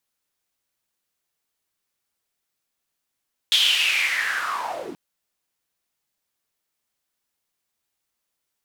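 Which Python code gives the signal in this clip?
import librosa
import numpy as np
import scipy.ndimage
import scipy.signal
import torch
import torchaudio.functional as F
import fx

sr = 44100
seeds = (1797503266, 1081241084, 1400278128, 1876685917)

y = fx.riser_noise(sr, seeds[0], length_s=1.43, colour='white', kind='bandpass', start_hz=3400.0, end_hz=230.0, q=7.1, swell_db=-7, law='linear')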